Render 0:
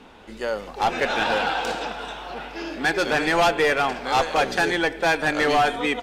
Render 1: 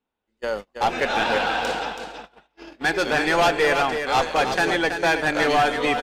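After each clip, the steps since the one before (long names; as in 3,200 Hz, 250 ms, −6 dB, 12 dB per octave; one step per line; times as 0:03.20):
noise gate −29 dBFS, range −36 dB
on a send: single-tap delay 327 ms −7.5 dB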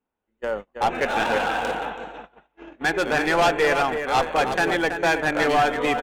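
adaptive Wiener filter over 9 samples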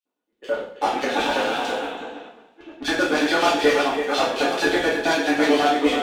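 auto-filter high-pass square 9.2 Hz 250–3,600 Hz
coupled-rooms reverb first 0.55 s, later 2.7 s, from −28 dB, DRR −7.5 dB
level −6.5 dB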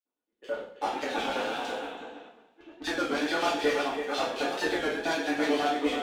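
wow of a warped record 33 1/3 rpm, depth 100 cents
level −8.5 dB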